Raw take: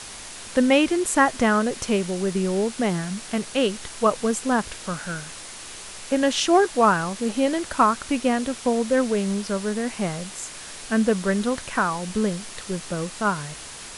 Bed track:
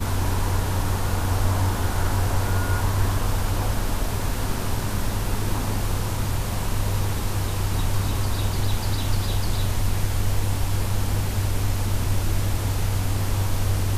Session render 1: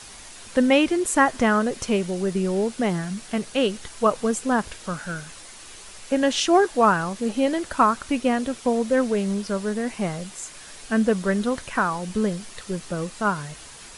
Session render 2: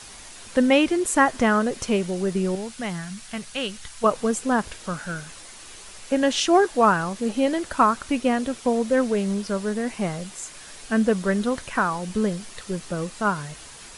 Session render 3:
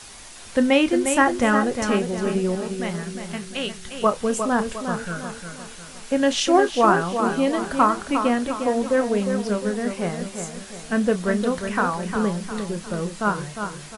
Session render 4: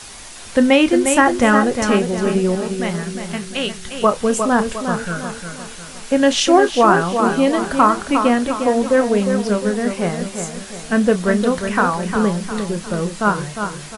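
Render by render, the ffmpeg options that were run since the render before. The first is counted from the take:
-af "afftdn=nr=6:nf=-39"
-filter_complex "[0:a]asettb=1/sr,asplit=3[s0][s1][s2];[s0]atrim=end=2.554[s3];[s1]atrim=start=2.55:end=4.04,asetpts=PTS-STARTPTS,afade=t=in:d=0.004:c=qsin,afade=t=out:st=1.486:d=0.004:c=qsin,equalizer=f=380:t=o:w=2:g=-11.5[s4];[s2]atrim=start=4.036[s5];[s3][s4]acrossfade=d=0.004:c1=hsin:c2=qsin[s6];[s6][s5]acrossfade=d=0.004:c1=qsin:c2=hsin"
-filter_complex "[0:a]asplit=2[s0][s1];[s1]adelay=29,volume=0.266[s2];[s0][s2]amix=inputs=2:normalize=0,asplit=2[s3][s4];[s4]adelay=355,lowpass=f=3800:p=1,volume=0.447,asplit=2[s5][s6];[s6]adelay=355,lowpass=f=3800:p=1,volume=0.45,asplit=2[s7][s8];[s8]adelay=355,lowpass=f=3800:p=1,volume=0.45,asplit=2[s9][s10];[s10]adelay=355,lowpass=f=3800:p=1,volume=0.45,asplit=2[s11][s12];[s12]adelay=355,lowpass=f=3800:p=1,volume=0.45[s13];[s3][s5][s7][s9][s11][s13]amix=inputs=6:normalize=0"
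-af "volume=1.88,alimiter=limit=0.794:level=0:latency=1"

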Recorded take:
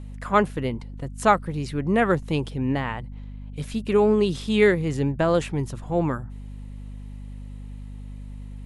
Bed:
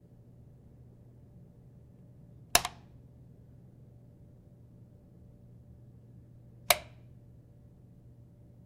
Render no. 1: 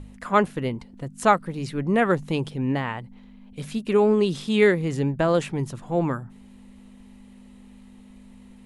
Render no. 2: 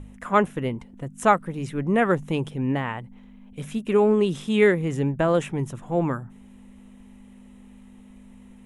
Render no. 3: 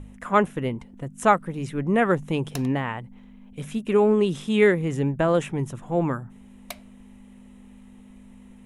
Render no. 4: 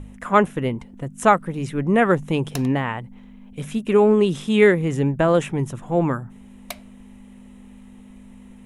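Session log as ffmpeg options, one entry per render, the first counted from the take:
-af "bandreject=f=50:t=h:w=4,bandreject=f=100:t=h:w=4,bandreject=f=150:t=h:w=4"
-af "equalizer=f=4500:t=o:w=0.35:g=-14"
-filter_complex "[1:a]volume=0.211[s0];[0:a][s0]amix=inputs=2:normalize=0"
-af "volume=1.5,alimiter=limit=0.708:level=0:latency=1"

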